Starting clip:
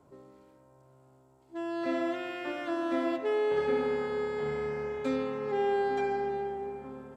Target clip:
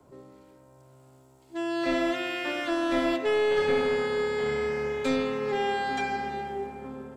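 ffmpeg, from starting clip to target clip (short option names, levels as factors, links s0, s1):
-filter_complex "[0:a]equalizer=f=1000:t=o:w=2.1:g=-3,bandreject=f=50:t=h:w=6,bandreject=f=100:t=h:w=6,bandreject=f=150:t=h:w=6,bandreject=f=200:t=h:w=6,bandreject=f=250:t=h:w=6,bandreject=f=300:t=h:w=6,bandreject=f=350:t=h:w=6,bandreject=f=400:t=h:w=6,acrossover=split=100|510|1800[s0][s1][s2][s3];[s1]aeval=exprs='clip(val(0),-1,0.0188)':c=same[s4];[s3]dynaudnorm=f=170:g=9:m=2[s5];[s0][s4][s2][s5]amix=inputs=4:normalize=0,volume=2"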